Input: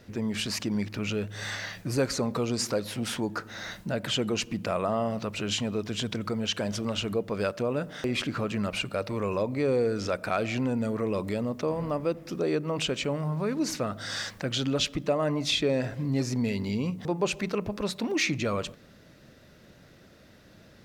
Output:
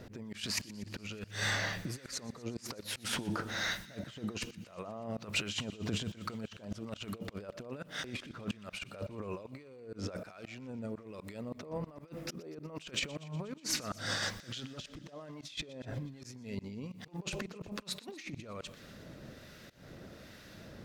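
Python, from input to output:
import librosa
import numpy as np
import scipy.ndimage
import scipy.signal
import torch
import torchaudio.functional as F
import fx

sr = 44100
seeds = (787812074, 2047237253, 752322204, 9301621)

y = fx.over_compress(x, sr, threshold_db=-34.0, ratio=-0.5)
y = fx.auto_swell(y, sr, attack_ms=200.0)
y = fx.harmonic_tremolo(y, sr, hz=1.2, depth_pct=50, crossover_hz=1200.0)
y = fx.echo_wet_highpass(y, sr, ms=121, feedback_pct=72, hz=1500.0, wet_db=-19.5)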